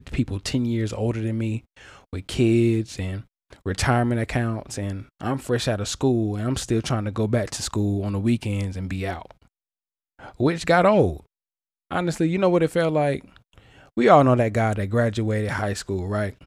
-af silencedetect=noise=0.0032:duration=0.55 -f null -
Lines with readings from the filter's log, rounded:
silence_start: 9.46
silence_end: 10.19 | silence_duration: 0.73
silence_start: 11.26
silence_end: 11.91 | silence_duration: 0.65